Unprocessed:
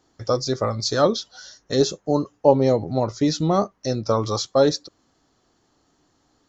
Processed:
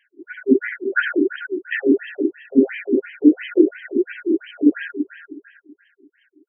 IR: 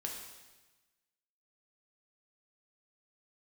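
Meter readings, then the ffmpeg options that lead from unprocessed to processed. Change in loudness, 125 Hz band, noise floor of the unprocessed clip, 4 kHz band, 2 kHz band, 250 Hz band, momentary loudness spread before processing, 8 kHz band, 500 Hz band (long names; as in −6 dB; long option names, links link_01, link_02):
+1.5 dB, below −25 dB, −66 dBFS, below −10 dB, +14.0 dB, +7.5 dB, 7 LU, can't be measured, −1.5 dB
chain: -filter_complex "[0:a]equalizer=frequency=75:width=0.65:gain=-3,aecho=1:1:633:0.075[link_01];[1:a]atrim=start_sample=2205,asetrate=29106,aresample=44100[link_02];[link_01][link_02]afir=irnorm=-1:irlink=0,afftfilt=real='re*(1-between(b*sr/4096,400,1400))':imag='im*(1-between(b*sr/4096,400,1400))':win_size=4096:overlap=0.75,apsyclip=17dB,afftfilt=real='re*between(b*sr/1024,360*pow(2300/360,0.5+0.5*sin(2*PI*2.9*pts/sr))/1.41,360*pow(2300/360,0.5+0.5*sin(2*PI*2.9*pts/sr))*1.41)':imag='im*between(b*sr/1024,360*pow(2300/360,0.5+0.5*sin(2*PI*2.9*pts/sr))/1.41,360*pow(2300/360,0.5+0.5*sin(2*PI*2.9*pts/sr))*1.41)':win_size=1024:overlap=0.75,volume=-1dB"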